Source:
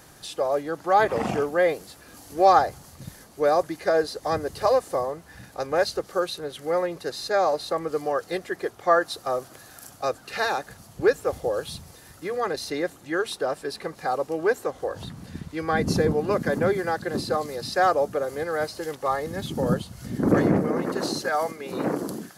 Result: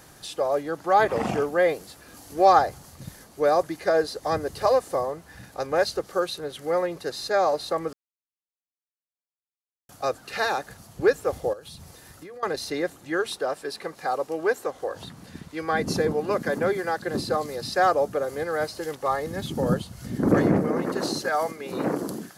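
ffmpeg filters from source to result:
ffmpeg -i in.wav -filter_complex "[0:a]asettb=1/sr,asplit=3[link_01][link_02][link_03];[link_01]atrim=end=11.534[link_04];[link_02]atrim=start=11.53:end=12.43,asetpts=PTS-STARTPTS,afade=type=in:duration=0.004:curve=qsin,afade=type=out:start_time=0.896:duration=0.004:curve=qsin,acompressor=threshold=-38dB:ratio=16:attack=3.2:release=140:knee=1:detection=peak[link_05];[link_03]atrim=start=12.426[link_06];[link_04][link_05]acrossfade=duration=0.004:curve1=hsin:curve2=qsin[link_07];[link_07][link_06]acrossfade=duration=0.004:curve1=qsin:curve2=hsin,asettb=1/sr,asplit=3[link_08][link_09][link_10];[link_08]atrim=end=13.394[link_11];[link_09]atrim=start=13.39:end=17.05,asetpts=PTS-STARTPTS,afade=type=in:duration=0.004:curve=qsin,afade=type=out:start_time=3.656:duration=0.004:curve=qsin,lowshelf=frequency=180:gain=-9.5[link_12];[link_10]atrim=start=17.046[link_13];[link_11][link_12]acrossfade=duration=0.004:curve1=hsin:curve2=qsin[link_14];[link_14][link_13]acrossfade=duration=0.004:curve1=qsin:curve2=hsin,asplit=3[link_15][link_16][link_17];[link_15]atrim=end=7.93,asetpts=PTS-STARTPTS,afade=type=out:start_time=7.926:duration=0.004:curve=hsin[link_18];[link_16]atrim=start=7.93:end=9.89,asetpts=PTS-STARTPTS,volume=0[link_19];[link_17]atrim=start=9.89,asetpts=PTS-STARTPTS,afade=type=in:duration=0.004:curve=hsin[link_20];[link_18][link_19][link_20]concat=n=3:v=0:a=1" out.wav

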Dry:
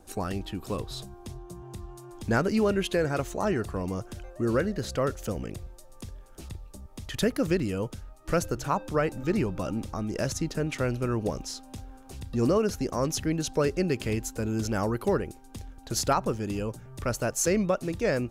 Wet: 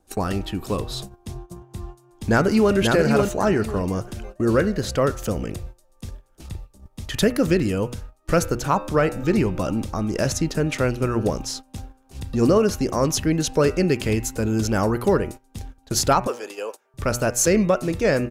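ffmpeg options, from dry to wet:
ffmpeg -i in.wav -filter_complex "[0:a]asplit=2[link_01][link_02];[link_02]afade=type=in:start_time=1.9:duration=0.01,afade=type=out:start_time=2.74:duration=0.01,aecho=0:1:540|1080|1620|2160:0.668344|0.167086|0.0417715|0.0104429[link_03];[link_01][link_03]amix=inputs=2:normalize=0,asettb=1/sr,asplit=3[link_04][link_05][link_06];[link_04]atrim=end=16.274[link_07];[link_05]atrim=start=16.27:end=16.94,asetpts=PTS-STARTPTS,afade=type=in:duration=0.004:curve=qsin,afade=type=out:start_time=0.666:duration=0.004:curve=qsin,highpass=frequency=450:width=0.5412,highpass=frequency=450:width=1.3066[link_08];[link_06]atrim=start=16.936[link_09];[link_07][link_08]acrossfade=duration=0.004:curve1=hsin:curve2=qsin[link_10];[link_10][link_09]acrossfade=duration=0.004:curve1=qsin:curve2=hsin,bandreject=frequency=121:width_type=h:width=4,bandreject=frequency=242:width_type=h:width=4,bandreject=frequency=363:width_type=h:width=4,bandreject=frequency=484:width_type=h:width=4,bandreject=frequency=605:width_type=h:width=4,bandreject=frequency=726:width_type=h:width=4,bandreject=frequency=847:width_type=h:width=4,bandreject=frequency=968:width_type=h:width=4,bandreject=frequency=1089:width_type=h:width=4,bandreject=frequency=1210:width_type=h:width=4,bandreject=frequency=1331:width_type=h:width=4,bandreject=frequency=1452:width_type=h:width=4,bandreject=frequency=1573:width_type=h:width=4,bandreject=frequency=1694:width_type=h:width=4,bandreject=frequency=1815:width_type=h:width=4,bandreject=frequency=1936:width_type=h:width=4,bandreject=frequency=2057:width_type=h:width=4,bandreject=frequency=2178:width_type=h:width=4,bandreject=frequency=2299:width_type=h:width=4,bandreject=frequency=2420:width_type=h:width=4,bandreject=frequency=2541:width_type=h:width=4,bandreject=frequency=2662:width_type=h:width=4,bandreject=frequency=2783:width_type=h:width=4,bandreject=frequency=2904:width_type=h:width=4,agate=range=-16dB:threshold=-41dB:ratio=16:detection=peak,acontrast=88" out.wav

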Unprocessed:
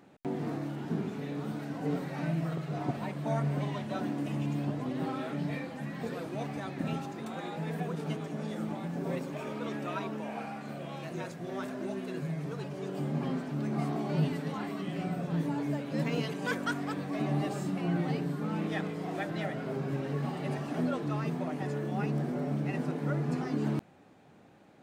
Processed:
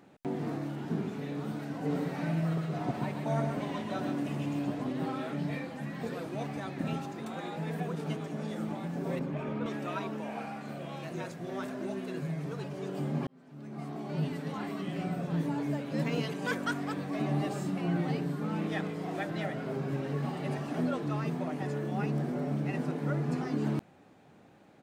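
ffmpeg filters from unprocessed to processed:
ffmpeg -i in.wav -filter_complex "[0:a]asplit=3[link_01][link_02][link_03];[link_01]afade=type=out:start_time=1.89:duration=0.02[link_04];[link_02]aecho=1:1:129:0.531,afade=type=in:start_time=1.89:duration=0.02,afade=type=out:start_time=4.91:duration=0.02[link_05];[link_03]afade=type=in:start_time=4.91:duration=0.02[link_06];[link_04][link_05][link_06]amix=inputs=3:normalize=0,asettb=1/sr,asplit=3[link_07][link_08][link_09];[link_07]atrim=end=9.194[link_10];[link_08]atrim=start=9.19:end=9.66,asetpts=PTS-STARTPTS,afade=type=in:duration=0.004:curve=qsin,afade=type=out:start_time=0.466:duration=0.004:curve=qsin,bass=frequency=250:gain=7,treble=frequency=4000:gain=-14[link_11];[link_09]atrim=start=9.656[link_12];[link_10][link_11]acrossfade=duration=0.004:curve1=hsin:curve2=qsin[link_13];[link_13][link_12]acrossfade=duration=0.004:curve1=qsin:curve2=hsin,asplit=2[link_14][link_15];[link_14]atrim=end=13.27,asetpts=PTS-STARTPTS,afade=type=out:start_time=13.266:duration=0.004:curve=hsin[link_16];[link_15]atrim=start=13.27,asetpts=PTS-STARTPTS,afade=type=in:duration=1.43[link_17];[link_16][link_17]concat=n=2:v=0:a=1" out.wav

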